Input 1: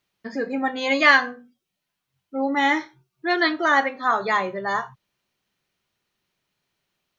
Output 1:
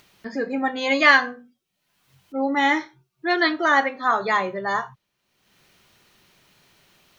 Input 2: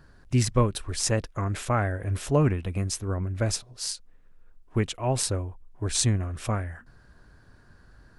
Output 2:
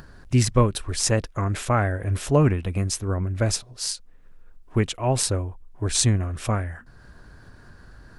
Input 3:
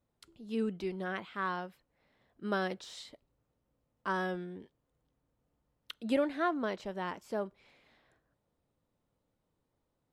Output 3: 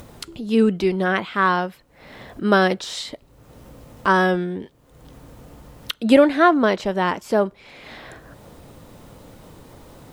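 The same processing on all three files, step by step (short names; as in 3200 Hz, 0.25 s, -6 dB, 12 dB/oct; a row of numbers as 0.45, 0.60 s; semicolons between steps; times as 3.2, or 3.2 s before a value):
upward compressor, threshold -43 dBFS; normalise peaks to -2 dBFS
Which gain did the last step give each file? +0.5, +3.5, +16.5 dB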